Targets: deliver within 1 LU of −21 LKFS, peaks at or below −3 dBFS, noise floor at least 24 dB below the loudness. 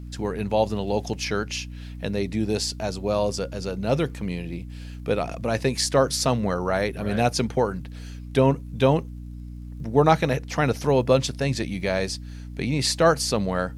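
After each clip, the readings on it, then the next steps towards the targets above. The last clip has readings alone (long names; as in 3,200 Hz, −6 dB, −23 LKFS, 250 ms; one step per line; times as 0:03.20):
crackle rate 33 per second; mains hum 60 Hz; hum harmonics up to 300 Hz; level of the hum −34 dBFS; integrated loudness −24.0 LKFS; sample peak −4.5 dBFS; target loudness −21.0 LKFS
→ click removal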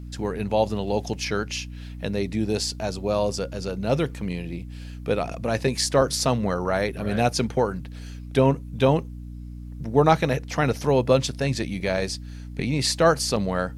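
crackle rate 0.073 per second; mains hum 60 Hz; hum harmonics up to 300 Hz; level of the hum −34 dBFS
→ mains-hum notches 60/120/180/240/300 Hz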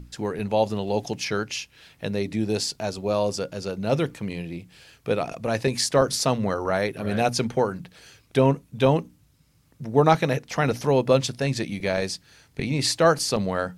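mains hum none found; integrated loudness −24.5 LKFS; sample peak −4.5 dBFS; target loudness −21.0 LKFS
→ level +3.5 dB
brickwall limiter −3 dBFS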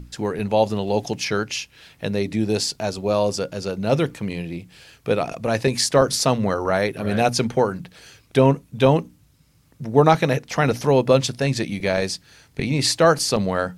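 integrated loudness −21.0 LKFS; sample peak −3.0 dBFS; background noise floor −57 dBFS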